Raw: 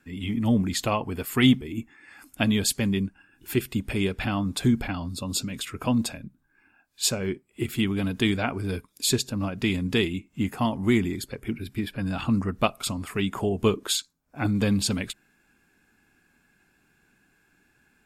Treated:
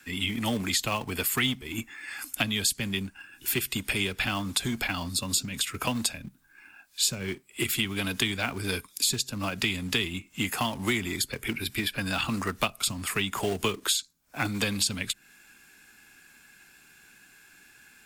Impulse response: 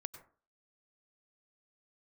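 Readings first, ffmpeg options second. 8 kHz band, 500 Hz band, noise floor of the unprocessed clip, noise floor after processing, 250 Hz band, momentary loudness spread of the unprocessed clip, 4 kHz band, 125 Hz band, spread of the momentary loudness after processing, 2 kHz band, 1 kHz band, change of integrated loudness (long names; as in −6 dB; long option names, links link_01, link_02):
+2.5 dB, −5.5 dB, −67 dBFS, −59 dBFS, −8.0 dB, 9 LU, +2.5 dB, −7.0 dB, 8 LU, +2.5 dB, −1.5 dB, −2.0 dB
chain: -filter_complex "[0:a]tiltshelf=frequency=1300:gain=-8,acrossover=split=120|290[link_01][link_02][link_03];[link_01]acompressor=threshold=-48dB:ratio=4[link_04];[link_02]acompressor=threshold=-46dB:ratio=4[link_05];[link_03]acompressor=threshold=-35dB:ratio=4[link_06];[link_04][link_05][link_06]amix=inputs=3:normalize=0,acrossover=split=260|1300[link_07][link_08][link_09];[link_08]acrusher=bits=2:mode=log:mix=0:aa=0.000001[link_10];[link_07][link_10][link_09]amix=inputs=3:normalize=0,volume=8dB"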